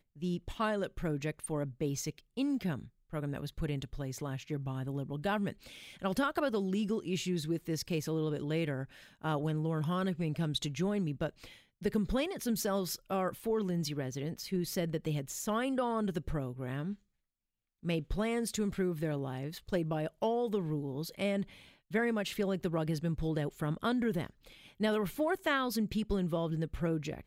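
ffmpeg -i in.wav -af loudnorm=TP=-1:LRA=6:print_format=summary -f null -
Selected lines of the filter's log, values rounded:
Input Integrated:    -34.8 LUFS
Input True Peak:     -16.7 dBTP
Input LRA:             2.8 LU
Input Threshold:     -45.0 LUFS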